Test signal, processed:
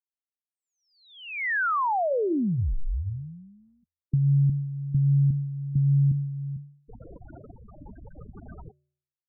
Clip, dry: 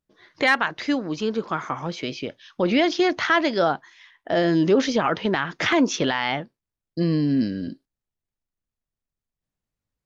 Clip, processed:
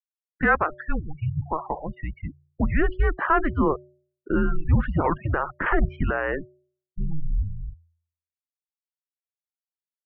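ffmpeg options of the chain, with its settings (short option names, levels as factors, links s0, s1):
-af "afftfilt=real='re*gte(hypot(re,im),0.0562)':imag='im*gte(hypot(re,im),0.0562)':win_size=1024:overlap=0.75,bandreject=f=226.5:t=h:w=4,bandreject=f=453:t=h:w=4,bandreject=f=679.5:t=h:w=4,bandreject=f=906:t=h:w=4,highpass=f=230:t=q:w=0.5412,highpass=f=230:t=q:w=1.307,lowpass=f=2300:t=q:w=0.5176,lowpass=f=2300:t=q:w=0.7071,lowpass=f=2300:t=q:w=1.932,afreqshift=-310"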